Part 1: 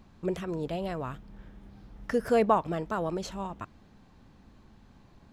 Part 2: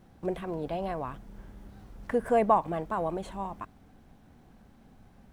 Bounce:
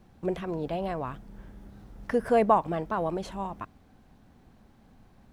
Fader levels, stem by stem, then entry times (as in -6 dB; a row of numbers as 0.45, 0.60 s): -7.0, -2.0 dB; 0.00, 0.00 s